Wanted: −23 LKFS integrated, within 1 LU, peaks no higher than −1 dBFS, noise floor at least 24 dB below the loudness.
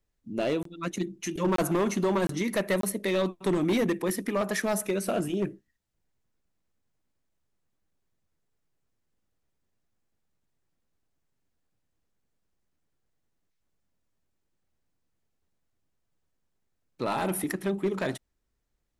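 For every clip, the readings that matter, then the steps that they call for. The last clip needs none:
share of clipped samples 0.8%; peaks flattened at −20.5 dBFS; number of dropouts 4; longest dropout 23 ms; integrated loudness −29.0 LKFS; sample peak −20.5 dBFS; target loudness −23.0 LKFS
→ clipped peaks rebuilt −20.5 dBFS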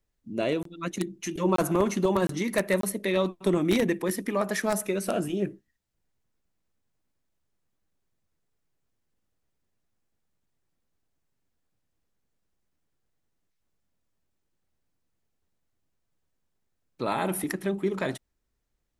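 share of clipped samples 0.0%; number of dropouts 4; longest dropout 23 ms
→ repair the gap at 0:00.63/0:01.56/0:02.27/0:02.81, 23 ms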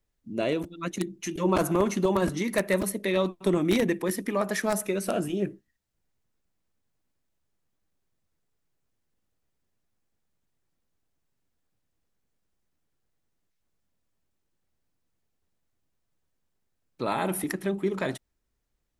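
number of dropouts 0; integrated loudness −28.0 LKFS; sample peak −11.5 dBFS; target loudness −23.0 LKFS
→ level +5 dB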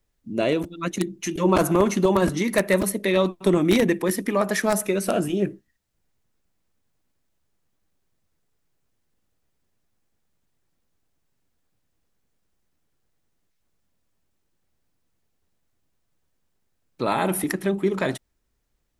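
integrated loudness −23.0 LKFS; sample peak −6.5 dBFS; background noise floor −73 dBFS

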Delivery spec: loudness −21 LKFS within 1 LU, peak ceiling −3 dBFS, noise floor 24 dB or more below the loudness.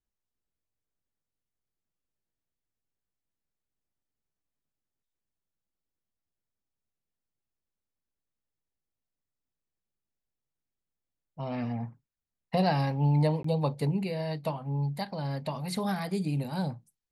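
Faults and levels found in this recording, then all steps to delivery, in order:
number of dropouts 1; longest dropout 14 ms; integrated loudness −30.5 LKFS; sample peak −15.0 dBFS; target loudness −21.0 LKFS
→ repair the gap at 0:13.43, 14 ms
level +9.5 dB

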